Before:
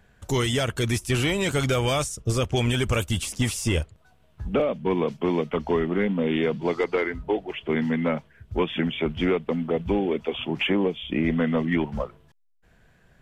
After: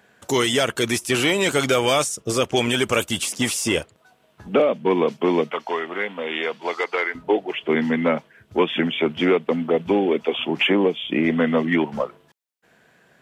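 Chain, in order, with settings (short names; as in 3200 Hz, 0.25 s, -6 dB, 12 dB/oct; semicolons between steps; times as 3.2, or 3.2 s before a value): HPF 250 Hz 12 dB/oct, from 5.53 s 710 Hz, from 7.15 s 240 Hz; gain +6 dB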